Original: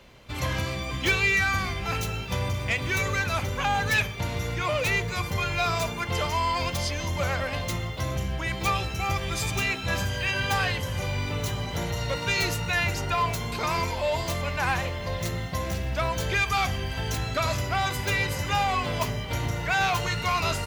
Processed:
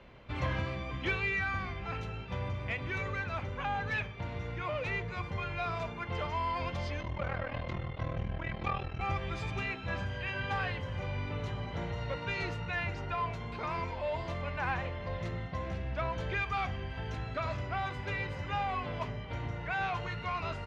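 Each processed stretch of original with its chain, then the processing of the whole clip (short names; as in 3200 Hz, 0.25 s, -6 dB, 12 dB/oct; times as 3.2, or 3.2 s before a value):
7.01–9.01 ring modulator 20 Hz + air absorption 110 m
whole clip: LPF 2500 Hz 12 dB/oct; vocal rider 2 s; gain -8 dB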